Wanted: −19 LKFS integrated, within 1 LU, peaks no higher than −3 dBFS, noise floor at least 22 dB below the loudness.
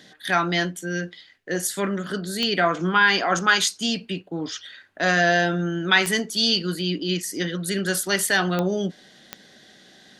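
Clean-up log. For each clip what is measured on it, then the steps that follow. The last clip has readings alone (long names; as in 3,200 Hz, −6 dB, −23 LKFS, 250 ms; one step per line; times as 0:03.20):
number of clicks 4; integrated loudness −22.5 LKFS; sample peak −4.0 dBFS; target loudness −19.0 LKFS
→ click removal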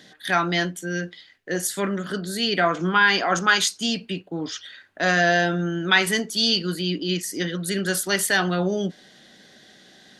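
number of clicks 0; integrated loudness −22.5 LKFS; sample peak −4.0 dBFS; target loudness −19.0 LKFS
→ level +3.5 dB
brickwall limiter −3 dBFS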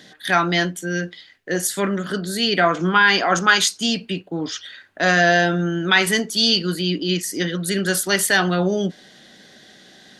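integrated loudness −19.0 LKFS; sample peak −3.0 dBFS; background noise floor −49 dBFS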